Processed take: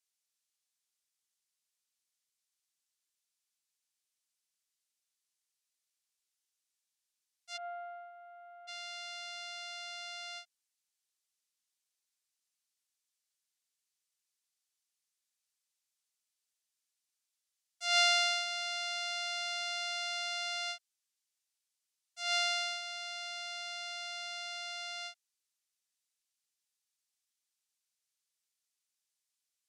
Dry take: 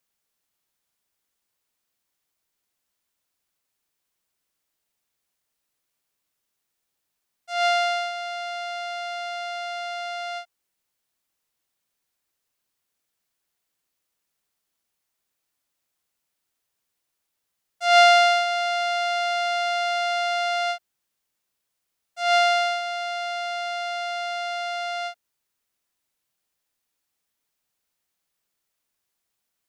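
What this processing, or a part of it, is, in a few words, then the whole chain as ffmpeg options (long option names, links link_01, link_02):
piezo pickup straight into a mixer: -filter_complex "[0:a]asplit=3[link_01][link_02][link_03];[link_01]afade=type=out:start_time=7.56:duration=0.02[link_04];[link_02]lowpass=frequency=1100:width=0.5412,lowpass=frequency=1100:width=1.3066,afade=type=in:start_time=7.56:duration=0.02,afade=type=out:start_time=8.67:duration=0.02[link_05];[link_03]afade=type=in:start_time=8.67:duration=0.02[link_06];[link_04][link_05][link_06]amix=inputs=3:normalize=0,lowpass=7300,aderivative"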